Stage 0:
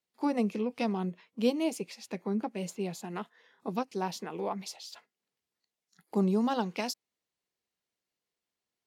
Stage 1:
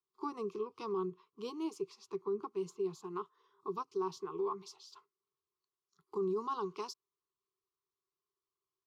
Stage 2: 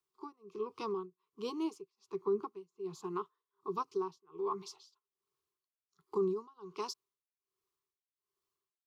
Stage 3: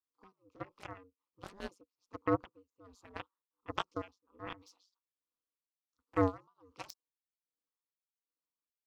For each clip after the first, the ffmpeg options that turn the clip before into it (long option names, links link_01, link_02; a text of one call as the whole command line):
ffmpeg -i in.wav -filter_complex "[0:a]firequalizer=gain_entry='entry(150,0);entry(240,-18);entry(390,12);entry(550,-25);entry(1100,12);entry(1700,-17);entry(3100,-7);entry(5700,-4);entry(9700,-14)':delay=0.05:min_phase=1,acrossover=split=110[link_01][link_02];[link_02]alimiter=limit=-23.5dB:level=0:latency=1:release=12[link_03];[link_01][link_03]amix=inputs=2:normalize=0,volume=-5dB" out.wav
ffmpeg -i in.wav -af "tremolo=f=1.3:d=0.98,volume=4dB" out.wav
ffmpeg -i in.wav -af "aeval=exprs='val(0)*sin(2*PI*95*n/s)':channel_layout=same,aeval=exprs='0.0596*(cos(1*acos(clip(val(0)/0.0596,-1,1)))-cos(1*PI/2))+0.0211*(cos(3*acos(clip(val(0)/0.0596,-1,1)))-cos(3*PI/2))+0.000668*(cos(7*acos(clip(val(0)/0.0596,-1,1)))-cos(7*PI/2))':channel_layout=same,volume=8.5dB" out.wav